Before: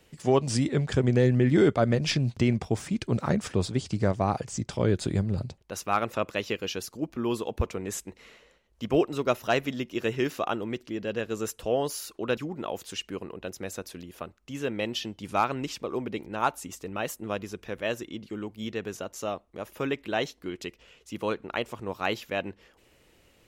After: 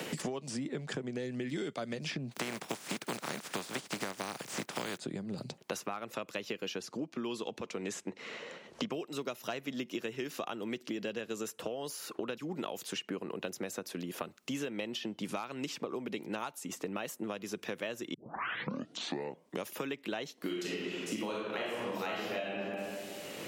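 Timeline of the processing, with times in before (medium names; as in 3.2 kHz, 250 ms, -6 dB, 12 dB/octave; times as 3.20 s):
2.31–4.97 s: spectral contrast reduction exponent 0.34
6.80–8.92 s: low-pass 7 kHz
18.14 s: tape start 1.55 s
20.37–22.49 s: reverb throw, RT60 1.1 s, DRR -7 dB
whole clip: compression 6:1, threshold -35 dBFS; high-pass 150 Hz 24 dB/octave; three bands compressed up and down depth 100%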